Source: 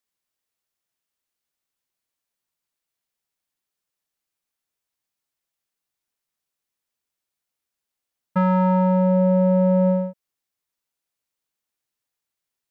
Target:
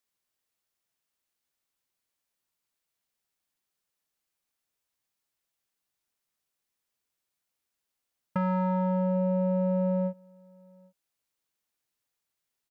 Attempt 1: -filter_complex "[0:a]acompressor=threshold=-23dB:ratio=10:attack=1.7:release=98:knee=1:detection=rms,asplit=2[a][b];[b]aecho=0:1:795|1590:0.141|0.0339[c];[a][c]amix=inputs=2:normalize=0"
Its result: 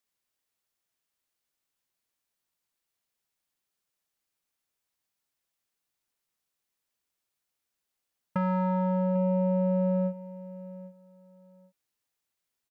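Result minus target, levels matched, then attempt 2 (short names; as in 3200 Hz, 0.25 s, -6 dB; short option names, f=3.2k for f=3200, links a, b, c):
echo-to-direct +11.5 dB
-filter_complex "[0:a]acompressor=threshold=-23dB:ratio=10:attack=1.7:release=98:knee=1:detection=rms,asplit=2[a][b];[b]aecho=0:1:795:0.0376[c];[a][c]amix=inputs=2:normalize=0"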